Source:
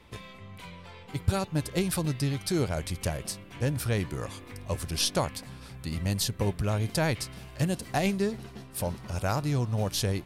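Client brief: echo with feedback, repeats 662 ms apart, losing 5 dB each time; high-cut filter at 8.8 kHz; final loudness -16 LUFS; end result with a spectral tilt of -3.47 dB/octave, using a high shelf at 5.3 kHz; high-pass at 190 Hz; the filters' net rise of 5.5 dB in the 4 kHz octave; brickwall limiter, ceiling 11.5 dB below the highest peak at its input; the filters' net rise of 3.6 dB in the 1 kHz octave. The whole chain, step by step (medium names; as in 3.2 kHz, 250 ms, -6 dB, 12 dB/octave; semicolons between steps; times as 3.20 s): high-pass 190 Hz; low-pass 8.8 kHz; peaking EQ 1 kHz +4.5 dB; peaking EQ 4 kHz +4 dB; treble shelf 5.3 kHz +6 dB; peak limiter -19 dBFS; feedback delay 662 ms, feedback 56%, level -5 dB; trim +15.5 dB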